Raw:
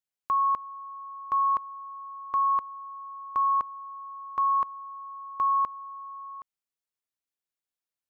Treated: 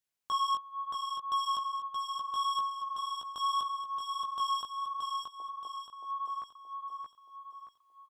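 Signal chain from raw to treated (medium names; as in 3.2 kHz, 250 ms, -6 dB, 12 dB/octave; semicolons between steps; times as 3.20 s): saturation -32.5 dBFS, distortion -6 dB; chorus 0.75 Hz, delay 15.5 ms, depth 5 ms; 5.14–5.93 s: Chebyshev band-pass 290–900 Hz, order 4; on a send: feedback delay 625 ms, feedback 45%, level -4 dB; on the sum: trim +6.5 dB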